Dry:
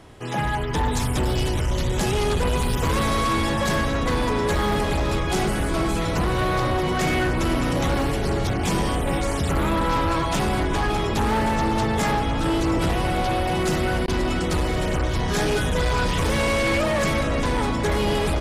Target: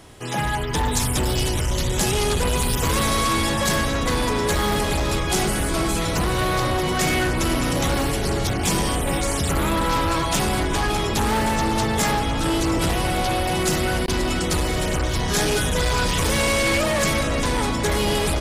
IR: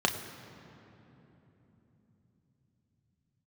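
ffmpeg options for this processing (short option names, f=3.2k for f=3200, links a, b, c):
-af "highshelf=f=4.1k:g=10.5"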